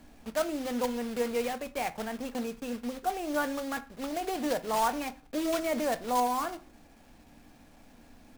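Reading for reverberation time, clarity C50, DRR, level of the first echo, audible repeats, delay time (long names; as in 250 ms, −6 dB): 0.40 s, 18.5 dB, 10.5 dB, no echo audible, no echo audible, no echo audible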